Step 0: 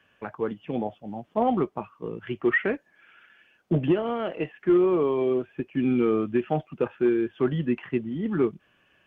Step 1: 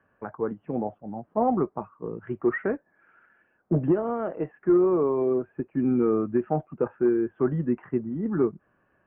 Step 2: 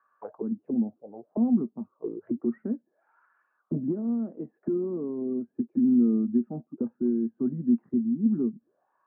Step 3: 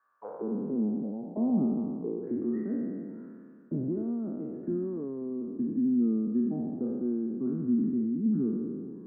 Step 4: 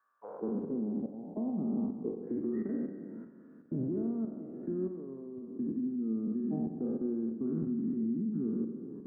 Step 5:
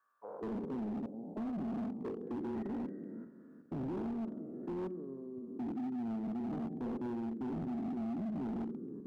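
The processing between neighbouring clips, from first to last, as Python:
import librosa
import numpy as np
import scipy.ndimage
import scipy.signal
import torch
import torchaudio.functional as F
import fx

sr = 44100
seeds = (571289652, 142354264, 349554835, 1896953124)

y1 = scipy.signal.sosfilt(scipy.signal.butter(4, 1500.0, 'lowpass', fs=sr, output='sos'), x)
y2 = fx.auto_wah(y1, sr, base_hz=230.0, top_hz=1200.0, q=7.6, full_db=-27.0, direction='down')
y2 = y2 * 10.0 ** (8.0 / 20.0)
y3 = fx.spec_trails(y2, sr, decay_s=2.1)
y3 = y3 * 10.0 ** (-5.5 / 20.0)
y4 = fx.level_steps(y3, sr, step_db=11)
y4 = fx.rev_spring(y4, sr, rt60_s=1.3, pass_ms=(44,), chirp_ms=25, drr_db=9.0)
y5 = np.clip(10.0 ** (34.0 / 20.0) * y4, -1.0, 1.0) / 10.0 ** (34.0 / 20.0)
y5 = y5 * 10.0 ** (-1.5 / 20.0)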